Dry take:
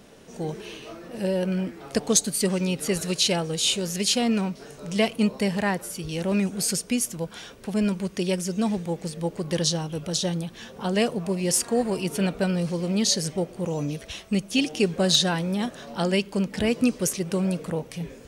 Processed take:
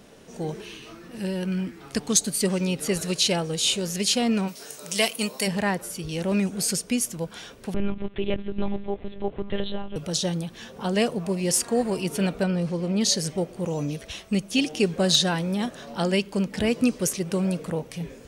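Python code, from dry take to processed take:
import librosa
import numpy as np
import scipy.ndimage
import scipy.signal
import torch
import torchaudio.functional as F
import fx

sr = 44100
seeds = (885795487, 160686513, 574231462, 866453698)

y = fx.peak_eq(x, sr, hz=590.0, db=-10.0, octaves=0.93, at=(0.64, 2.21))
y = fx.riaa(y, sr, side='recording', at=(4.47, 5.46), fade=0.02)
y = fx.lpc_monotone(y, sr, seeds[0], pitch_hz=200.0, order=10, at=(7.74, 9.96))
y = fx.high_shelf(y, sr, hz=3600.0, db=-9.0, at=(12.43, 13.01))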